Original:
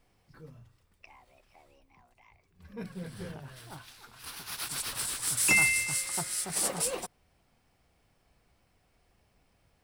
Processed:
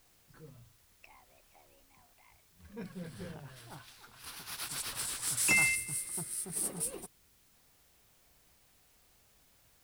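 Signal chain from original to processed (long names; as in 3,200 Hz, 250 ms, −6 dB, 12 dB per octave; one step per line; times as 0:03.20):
gain on a spectral selection 0:05.75–0:07.55, 460–8,200 Hz −10 dB
background noise white −64 dBFS
level −3.5 dB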